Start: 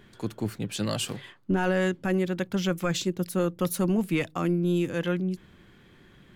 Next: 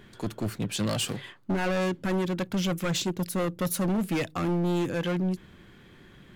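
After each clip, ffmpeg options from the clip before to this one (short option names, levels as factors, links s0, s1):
-af "volume=20,asoftclip=hard,volume=0.0501,volume=1.33"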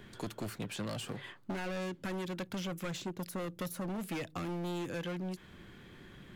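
-filter_complex "[0:a]acrossover=split=490|2000[s0][s1][s2];[s0]acompressor=threshold=0.0112:ratio=4[s3];[s1]acompressor=threshold=0.00708:ratio=4[s4];[s2]acompressor=threshold=0.00501:ratio=4[s5];[s3][s4][s5]amix=inputs=3:normalize=0,volume=0.891"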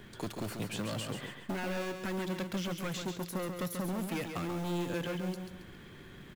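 -af "acrusher=bits=5:mode=log:mix=0:aa=0.000001,aecho=1:1:137|274|411|548:0.473|0.17|0.0613|0.0221,volume=1.19"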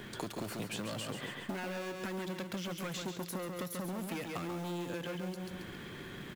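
-af "lowshelf=f=78:g=-11.5,acompressor=threshold=0.00708:ratio=6,volume=2.11"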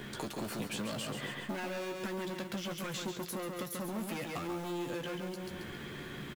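-filter_complex "[0:a]asplit=2[s0][s1];[s1]aeval=exprs='0.0158*(abs(mod(val(0)/0.0158+3,4)-2)-1)':c=same,volume=0.376[s2];[s0][s2]amix=inputs=2:normalize=0,asplit=2[s3][s4];[s4]adelay=14,volume=0.447[s5];[s3][s5]amix=inputs=2:normalize=0,volume=0.841"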